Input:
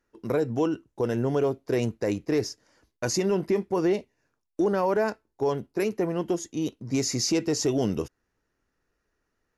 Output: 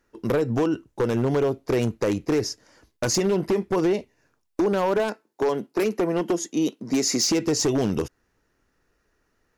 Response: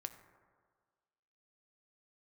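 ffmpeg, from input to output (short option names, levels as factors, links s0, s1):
-filter_complex "[0:a]asplit=3[s0][s1][s2];[s0]afade=t=out:st=4.98:d=0.02[s3];[s1]highpass=f=180:w=0.5412,highpass=f=180:w=1.3066,afade=t=in:st=4.98:d=0.02,afade=t=out:st=7.23:d=0.02[s4];[s2]afade=t=in:st=7.23:d=0.02[s5];[s3][s4][s5]amix=inputs=3:normalize=0,acompressor=threshold=0.0501:ratio=4,aeval=exprs='0.0708*(abs(mod(val(0)/0.0708+3,4)-2)-1)':c=same,volume=2.37"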